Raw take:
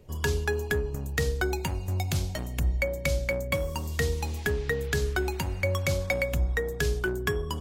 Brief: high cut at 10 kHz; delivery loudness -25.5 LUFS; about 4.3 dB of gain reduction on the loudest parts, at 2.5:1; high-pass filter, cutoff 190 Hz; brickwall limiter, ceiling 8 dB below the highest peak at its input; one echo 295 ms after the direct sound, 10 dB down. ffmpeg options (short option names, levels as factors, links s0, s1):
-af "highpass=190,lowpass=10000,acompressor=threshold=0.02:ratio=2.5,alimiter=limit=0.0708:level=0:latency=1,aecho=1:1:295:0.316,volume=4.22"